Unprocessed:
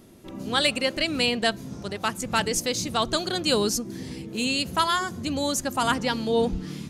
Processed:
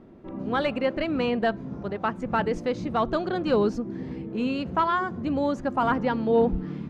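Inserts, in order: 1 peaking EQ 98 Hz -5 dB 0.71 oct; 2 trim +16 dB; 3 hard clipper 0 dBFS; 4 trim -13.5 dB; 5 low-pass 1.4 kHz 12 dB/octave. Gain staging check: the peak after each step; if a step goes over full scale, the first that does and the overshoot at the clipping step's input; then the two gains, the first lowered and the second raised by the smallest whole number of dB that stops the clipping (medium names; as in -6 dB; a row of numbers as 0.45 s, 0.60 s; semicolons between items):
-9.5 dBFS, +6.5 dBFS, 0.0 dBFS, -13.5 dBFS, -13.0 dBFS; step 2, 6.5 dB; step 2 +9 dB, step 4 -6.5 dB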